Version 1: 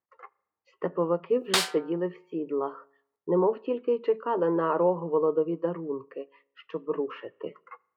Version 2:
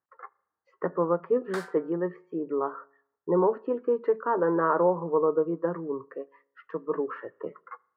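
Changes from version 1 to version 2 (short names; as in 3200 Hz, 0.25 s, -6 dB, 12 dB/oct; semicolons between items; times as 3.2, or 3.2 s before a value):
background -11.5 dB; master: add resonant high shelf 2100 Hz -9 dB, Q 3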